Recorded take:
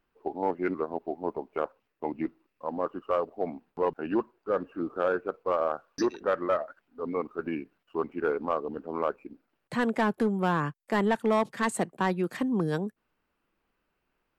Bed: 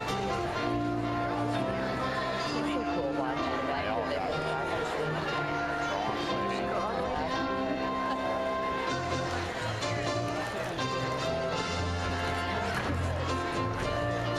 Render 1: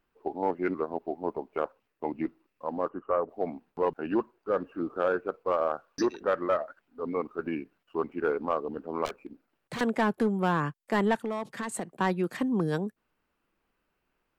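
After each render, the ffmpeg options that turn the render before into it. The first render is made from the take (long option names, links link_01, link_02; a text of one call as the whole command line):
ffmpeg -i in.wav -filter_complex "[0:a]asplit=3[link_01][link_02][link_03];[link_01]afade=type=out:start_time=2.88:duration=0.02[link_04];[link_02]lowpass=frequency=2000:width=0.5412,lowpass=frequency=2000:width=1.3066,afade=type=in:start_time=2.88:duration=0.02,afade=type=out:start_time=3.28:duration=0.02[link_05];[link_03]afade=type=in:start_time=3.28:duration=0.02[link_06];[link_04][link_05][link_06]amix=inputs=3:normalize=0,asettb=1/sr,asplit=3[link_07][link_08][link_09];[link_07]atrim=end=9.054[link_10];[link_08]atrim=start=9.05:end=9.81,asetpts=PTS-STARTPTS,afade=type=in:duration=0.004:curve=qsin,afade=type=out:start_time=0.756:duration=0.004:curve=qsin,aeval=exprs='0.0316*(abs(mod(val(0)/0.0316+3,4)-2)-1)':channel_layout=same[link_11];[link_09]atrim=start=9.806[link_12];[link_10][link_11]acrossfade=duration=0.004:curve1=hsin:curve2=qsin[link_13];[link_13][link_12]acrossfade=duration=0.004:curve1=qsin:curve2=hsin,asettb=1/sr,asplit=3[link_14][link_15][link_16];[link_14]atrim=end=11.184[link_17];[link_15]atrim=start=11.18:end=11.87,asetpts=PTS-STARTPTS,afade=type=in:duration=0.004:curve=qsin,afade=type=out:start_time=0.686:duration=0.004:curve=qsin,acompressor=threshold=-29dB:ratio=6:attack=3.2:release=140:knee=1:detection=peak[link_18];[link_16]atrim=start=11.866[link_19];[link_17][link_18]acrossfade=duration=0.004:curve1=hsin:curve2=qsin[link_20];[link_20][link_19]acrossfade=duration=0.004:curve1=qsin:curve2=hsin" out.wav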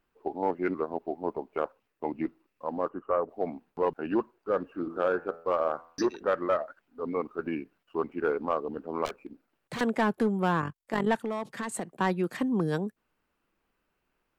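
ffmpeg -i in.wav -filter_complex "[0:a]asettb=1/sr,asplit=3[link_01][link_02][link_03];[link_01]atrim=end=4.714[link_04];[link_02]atrim=start=4.71:end=6.09,asetpts=PTS-STARTPTS,afade=type=in:duration=0.004:curve=qsin,afade=type=out:start_time=1.376:duration=0.004:curve=qsin,bandreject=frequency=83.18:width_type=h:width=4,bandreject=frequency=166.36:width_type=h:width=4,bandreject=frequency=249.54:width_type=h:width=4,bandreject=frequency=332.72:width_type=h:width=4,bandreject=frequency=415.9:width_type=h:width=4,bandreject=frequency=499.08:width_type=h:width=4,bandreject=frequency=582.26:width_type=h:width=4,bandreject=frequency=665.44:width_type=h:width=4,bandreject=frequency=748.62:width_type=h:width=4,bandreject=frequency=831.8:width_type=h:width=4,bandreject=frequency=914.98:width_type=h:width=4,bandreject=frequency=998.16:width_type=h:width=4,bandreject=frequency=1081.34:width_type=h:width=4,bandreject=frequency=1164.52:width_type=h:width=4,bandreject=frequency=1247.7:width_type=h:width=4,bandreject=frequency=1330.88:width_type=h:width=4,bandreject=frequency=1414.06:width_type=h:width=4,bandreject=frequency=1497.24:width_type=h:width=4,bandreject=frequency=1580.42:width_type=h:width=4,bandreject=frequency=1663.6:width_type=h:width=4,bandreject=frequency=1746.78:width_type=h:width=4,bandreject=frequency=1829.96:width_type=h:width=4,bandreject=frequency=1913.14:width_type=h:width=4,bandreject=frequency=1996.32:width_type=h:width=4,bandreject=frequency=2079.5:width_type=h:width=4,bandreject=frequency=2162.68:width_type=h:width=4[link_05];[link_03]atrim=start=6.086[link_06];[link_04][link_05]acrossfade=duration=0.004:curve1=hsin:curve2=qsin[link_07];[link_07][link_06]acrossfade=duration=0.004:curve1=qsin:curve2=hsin,asplit=3[link_08][link_09][link_10];[link_08]afade=type=out:start_time=10.6:duration=0.02[link_11];[link_09]tremolo=f=46:d=0.71,afade=type=in:start_time=10.6:duration=0.02,afade=type=out:start_time=11.06:duration=0.02[link_12];[link_10]afade=type=in:start_time=11.06:duration=0.02[link_13];[link_11][link_12][link_13]amix=inputs=3:normalize=0" out.wav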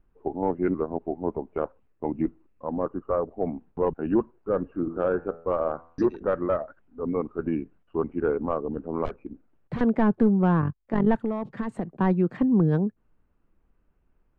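ffmpeg -i in.wav -af "lowpass=frequency=2300:poles=1,aemphasis=mode=reproduction:type=riaa" out.wav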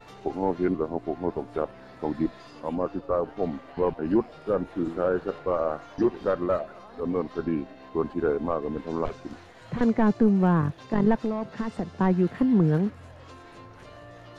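ffmpeg -i in.wav -i bed.wav -filter_complex "[1:a]volume=-15.5dB[link_01];[0:a][link_01]amix=inputs=2:normalize=0" out.wav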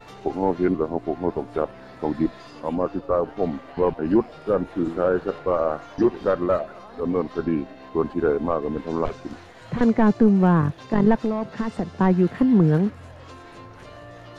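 ffmpeg -i in.wav -af "volume=4dB" out.wav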